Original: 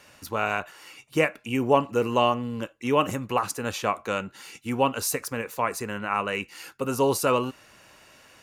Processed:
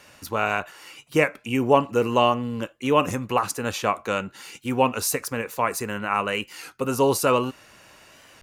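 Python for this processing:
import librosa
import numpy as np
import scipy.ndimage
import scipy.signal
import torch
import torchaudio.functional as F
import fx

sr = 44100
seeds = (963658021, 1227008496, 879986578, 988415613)

y = fx.high_shelf(x, sr, hz=10000.0, db=5.5, at=(5.6, 6.56))
y = fx.record_warp(y, sr, rpm=33.33, depth_cents=100.0)
y = y * librosa.db_to_amplitude(2.5)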